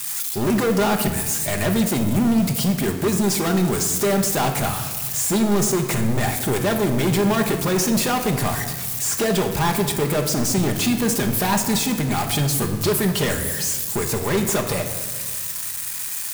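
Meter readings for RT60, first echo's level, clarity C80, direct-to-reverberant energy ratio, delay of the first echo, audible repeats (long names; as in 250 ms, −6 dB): 1.5 s, no echo audible, 9.5 dB, 3.5 dB, no echo audible, no echo audible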